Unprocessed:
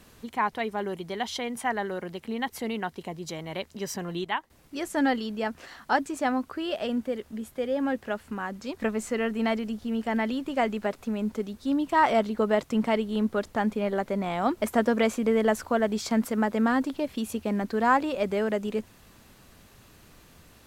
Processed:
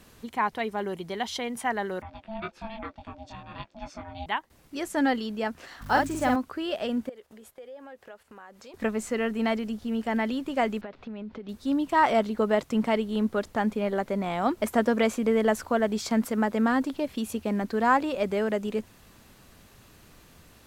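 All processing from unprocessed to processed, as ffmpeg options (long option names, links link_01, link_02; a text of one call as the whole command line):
ffmpeg -i in.wav -filter_complex "[0:a]asettb=1/sr,asplit=3[link_01][link_02][link_03];[link_01]atrim=end=2.024[link_04];[link_02]atrim=start=2.02:end=4.26,asetpts=PTS-STARTPTS,afade=type=in:duration=0.004:curve=qsin,afade=type=out:start_time=2.236:duration=0.004:curve=qsin,lowpass=3500,flanger=delay=19.5:depth=2.6:speed=1.1,aeval=exprs='val(0)*sin(2*PI*440*n/s)':channel_layout=same[link_05];[link_03]atrim=start=4.256[link_06];[link_04][link_05]acrossfade=duration=0.004:curve1=hsin:curve2=qsin[link_07];[link_07][link_06]acrossfade=duration=0.004:curve1=qsin:curve2=hsin,asettb=1/sr,asplit=3[link_08][link_09][link_10];[link_08]atrim=end=5.814[link_11];[link_09]atrim=start=5.81:end=6.36,asetpts=PTS-STARTPTS,afade=type=in:duration=0.004:curve=qsin,afade=type=out:start_time=0.546:duration=0.004:curve=qsin,aeval=exprs='val(0)+0.0112*(sin(2*PI*50*n/s)+sin(2*PI*2*50*n/s)/2+sin(2*PI*3*50*n/s)/3+sin(2*PI*4*50*n/s)/4+sin(2*PI*5*50*n/s)/5)':channel_layout=same,acrusher=bits=9:dc=4:mix=0:aa=0.000001,asplit=2[link_12][link_13];[link_13]adelay=48,volume=-2.5dB[link_14];[link_12][link_14]amix=inputs=2:normalize=0,atrim=end_sample=24255[link_15];[link_10]atrim=start=6.356[link_16];[link_11][link_15]acrossfade=duration=0.004:curve1=hsin:curve2=qsin[link_17];[link_17][link_16]acrossfade=duration=0.004:curve1=qsin:curve2=hsin,asettb=1/sr,asplit=3[link_18][link_19][link_20];[link_18]atrim=end=7.094[link_21];[link_19]atrim=start=7.09:end=8.74,asetpts=PTS-STARTPTS,afade=type=in:duration=0.004:curve=qsin,afade=type=out:start_time=1.646:duration=0.004:curve=qsin,agate=range=-11dB:threshold=-49dB:ratio=16:release=100:detection=peak,lowshelf=frequency=350:width_type=q:width=1.5:gain=-8,acompressor=threshold=-47dB:ratio=3:attack=3.2:release=140:knee=1:detection=peak[link_22];[link_20]atrim=start=8.736[link_23];[link_21][link_22]acrossfade=duration=0.004:curve1=hsin:curve2=qsin[link_24];[link_24][link_23]acrossfade=duration=0.004:curve1=qsin:curve2=hsin,asettb=1/sr,asplit=3[link_25][link_26][link_27];[link_25]atrim=end=10.814[link_28];[link_26]atrim=start=10.81:end=11.49,asetpts=PTS-STARTPTS,afade=type=in:duration=0.004:curve=qsin,afade=type=out:start_time=0.676:duration=0.004:curve=qsin,lowpass=frequency=4100:width=0.5412,lowpass=frequency=4100:width=1.3066,acompressor=threshold=-34dB:ratio=12:attack=3.2:release=140:knee=1:detection=peak[link_29];[link_27]atrim=start=11.486[link_30];[link_28][link_29]acrossfade=duration=0.004:curve1=hsin:curve2=qsin[link_31];[link_31][link_30]acrossfade=duration=0.004:curve1=qsin:curve2=hsin" out.wav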